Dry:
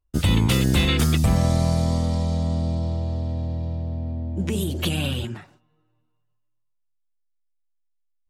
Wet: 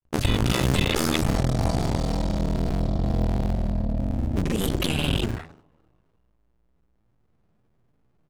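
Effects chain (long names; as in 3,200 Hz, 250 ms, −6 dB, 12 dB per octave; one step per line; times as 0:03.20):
sub-harmonics by changed cycles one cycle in 2, muted
in parallel at +1 dB: compressor whose output falls as the input rises −29 dBFS, ratio −0.5
on the sum: hum removal 83.83 Hz, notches 13
granular cloud 100 ms, grains 20 per second, spray 33 ms, pitch spread up and down by 0 semitones
one half of a high-frequency compander decoder only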